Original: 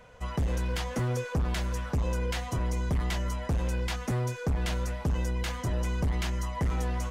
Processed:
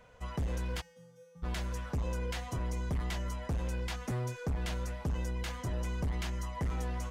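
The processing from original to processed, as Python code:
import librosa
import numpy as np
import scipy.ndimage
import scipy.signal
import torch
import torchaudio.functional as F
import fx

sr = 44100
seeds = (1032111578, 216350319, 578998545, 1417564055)

y = fx.comb_fb(x, sr, f0_hz=170.0, decay_s=0.88, harmonics='odd', damping=0.0, mix_pct=100, at=(0.8, 1.42), fade=0.02)
y = y * 10.0 ** (-5.5 / 20.0)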